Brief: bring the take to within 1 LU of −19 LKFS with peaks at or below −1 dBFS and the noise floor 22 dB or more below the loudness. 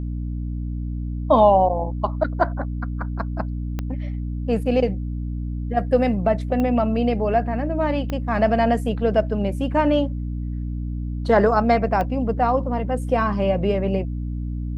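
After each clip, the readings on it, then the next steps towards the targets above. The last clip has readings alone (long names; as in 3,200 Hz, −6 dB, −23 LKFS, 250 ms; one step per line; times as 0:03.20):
number of clicks 4; mains hum 60 Hz; hum harmonics up to 300 Hz; level of the hum −24 dBFS; integrated loudness −22.5 LKFS; sample peak −4.5 dBFS; target loudness −19.0 LKFS
→ click removal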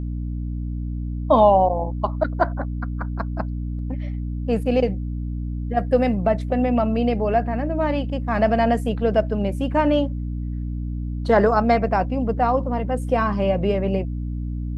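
number of clicks 0; mains hum 60 Hz; hum harmonics up to 300 Hz; level of the hum −24 dBFS
→ hum removal 60 Hz, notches 5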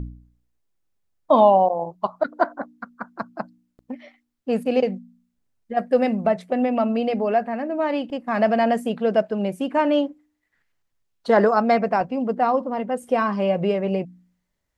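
mains hum none found; integrated loudness −21.5 LKFS; sample peak −5.0 dBFS; target loudness −19.0 LKFS
→ level +2.5 dB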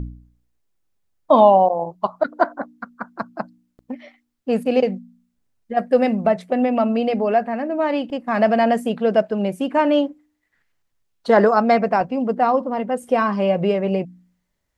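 integrated loudness −19.0 LKFS; sample peak −2.5 dBFS; background noise floor −73 dBFS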